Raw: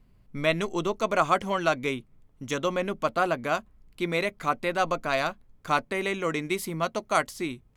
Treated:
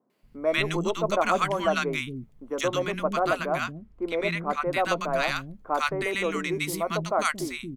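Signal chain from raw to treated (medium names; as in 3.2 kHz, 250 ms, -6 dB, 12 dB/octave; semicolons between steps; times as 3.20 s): 3.54–4.62 s: low-pass 3 kHz 6 dB/octave; three bands offset in time mids, highs, lows 100/230 ms, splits 270/1100 Hz; trim +2.5 dB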